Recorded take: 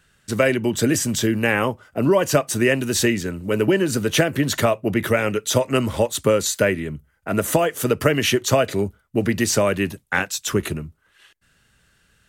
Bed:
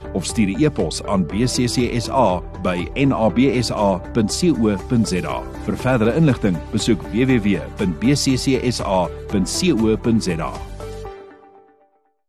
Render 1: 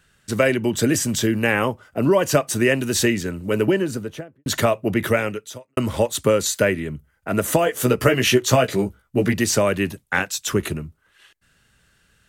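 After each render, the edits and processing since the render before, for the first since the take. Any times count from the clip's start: 3.55–4.46 studio fade out; 5.17–5.77 fade out quadratic; 7.65–9.34 doubler 16 ms -4 dB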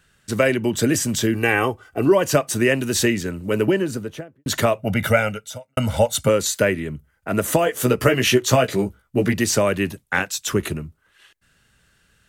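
1.34–2.12 comb 2.6 ms, depth 58%; 4.79–6.29 comb 1.4 ms, depth 79%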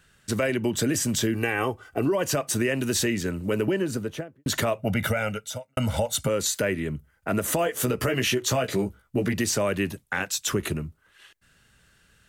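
limiter -11 dBFS, peak gain reduction 8.5 dB; compressor 2:1, threshold -24 dBFS, peak gain reduction 5.5 dB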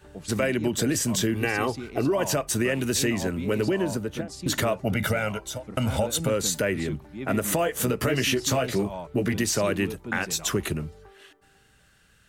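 add bed -18.5 dB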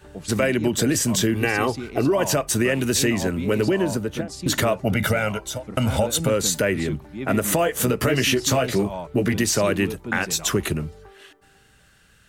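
gain +4 dB

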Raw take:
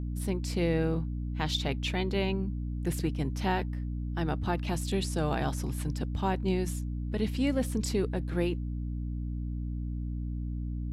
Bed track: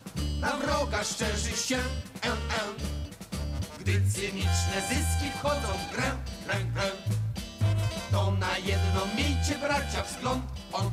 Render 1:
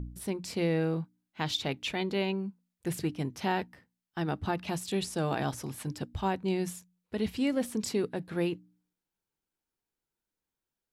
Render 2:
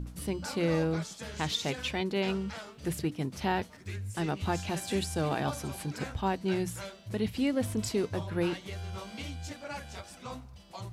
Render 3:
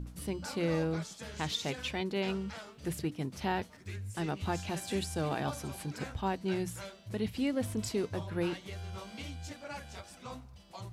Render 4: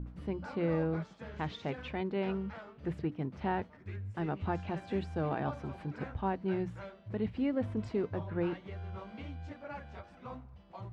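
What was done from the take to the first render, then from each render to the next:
de-hum 60 Hz, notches 5
add bed track -12.5 dB
gain -3 dB
LPF 1800 Hz 12 dB/oct

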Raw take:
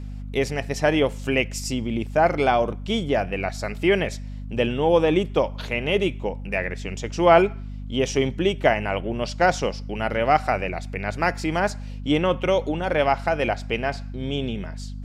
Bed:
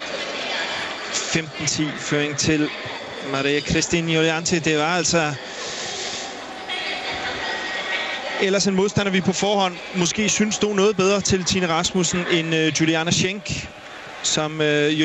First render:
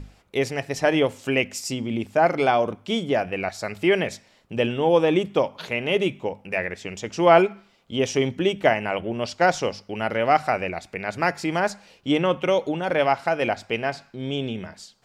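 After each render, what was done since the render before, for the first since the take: notches 50/100/150/200/250 Hz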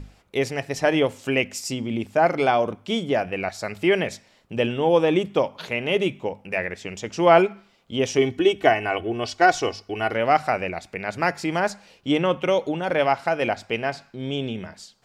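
8.18–10.14 comb 2.7 ms, depth 66%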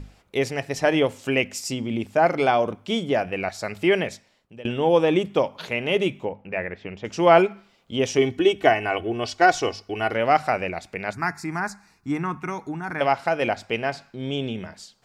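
3.95–4.65 fade out, to -22.5 dB; 6.25–7.05 air absorption 330 m; 11.13–13.01 fixed phaser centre 1300 Hz, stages 4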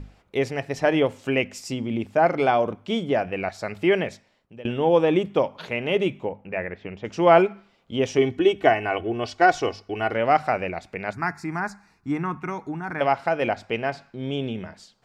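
high shelf 4300 Hz -9.5 dB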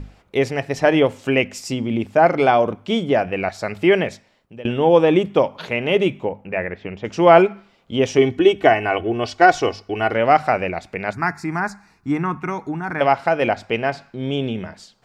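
gain +5 dB; limiter -1 dBFS, peak gain reduction 1.5 dB

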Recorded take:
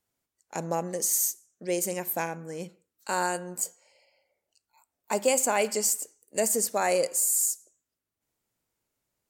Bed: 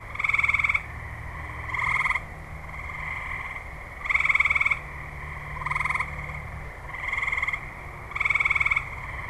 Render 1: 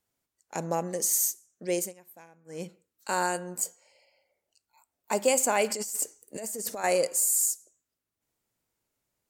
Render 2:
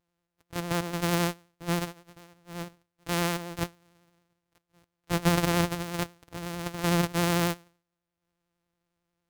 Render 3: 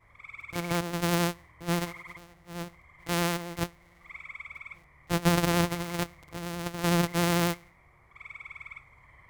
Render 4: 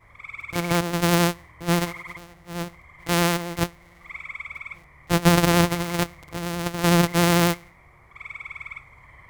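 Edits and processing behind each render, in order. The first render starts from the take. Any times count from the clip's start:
1.79–2.59 dip -21.5 dB, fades 0.14 s; 5.7–6.84 negative-ratio compressor -34 dBFS
sample sorter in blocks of 256 samples; vibrato 11 Hz 34 cents
add bed -21.5 dB
gain +7 dB

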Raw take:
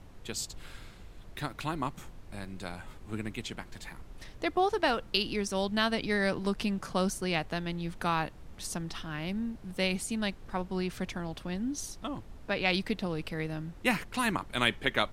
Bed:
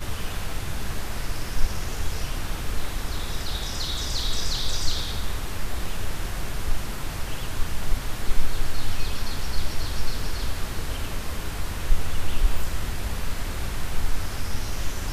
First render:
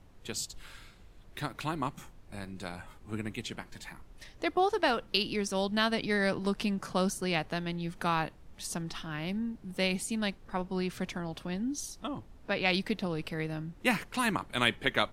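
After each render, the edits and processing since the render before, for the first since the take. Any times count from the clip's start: noise print and reduce 6 dB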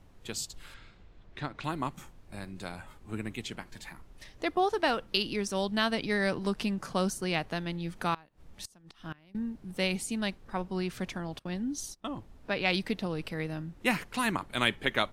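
0.74–1.64 air absorption 120 m; 8.14–9.35 flipped gate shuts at -28 dBFS, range -24 dB; 11.39–12.12 gate -46 dBFS, range -19 dB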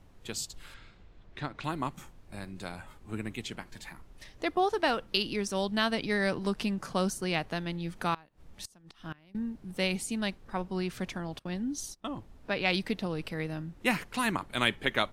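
nothing audible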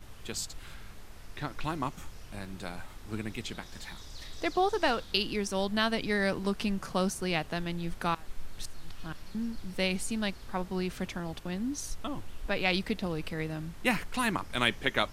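add bed -19.5 dB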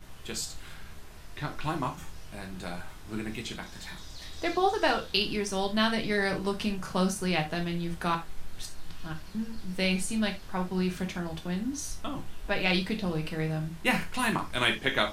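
non-linear reverb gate 0.11 s falling, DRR 2.5 dB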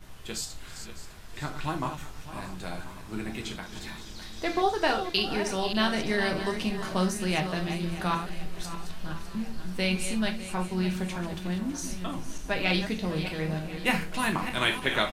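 regenerating reverse delay 0.302 s, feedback 54%, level -9.5 dB; feedback echo 1.04 s, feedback 57%, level -19 dB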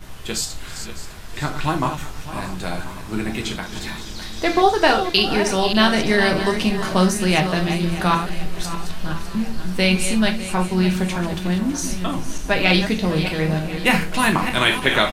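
gain +10 dB; limiter -2 dBFS, peak gain reduction 3 dB

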